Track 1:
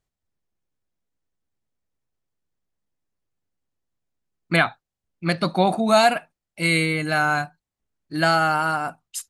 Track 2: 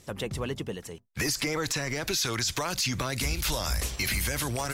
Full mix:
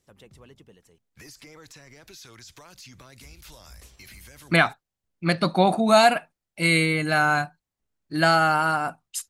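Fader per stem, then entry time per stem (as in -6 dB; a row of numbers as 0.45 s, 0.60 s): 0.0 dB, -18.0 dB; 0.00 s, 0.00 s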